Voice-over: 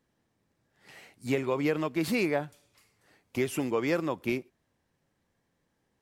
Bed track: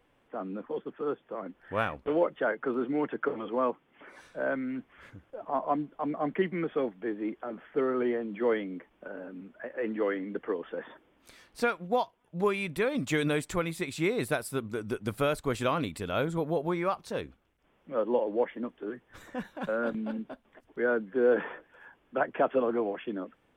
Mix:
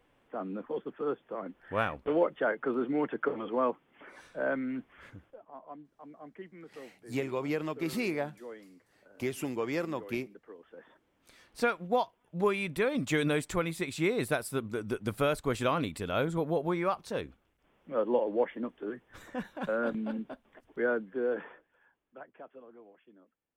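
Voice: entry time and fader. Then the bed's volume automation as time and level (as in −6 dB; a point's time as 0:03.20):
5.85 s, −4.5 dB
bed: 0:05.26 −0.5 dB
0:05.47 −18 dB
0:10.51 −18 dB
0:11.57 −0.5 dB
0:20.79 −0.5 dB
0:22.56 −24.5 dB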